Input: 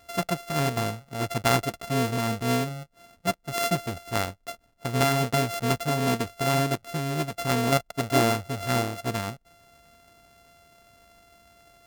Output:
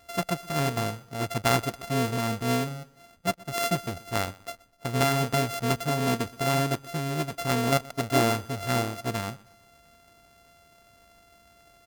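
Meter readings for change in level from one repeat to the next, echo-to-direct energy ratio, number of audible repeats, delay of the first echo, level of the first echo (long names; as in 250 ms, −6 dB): −8.5 dB, −21.5 dB, 2, 124 ms, −22.0 dB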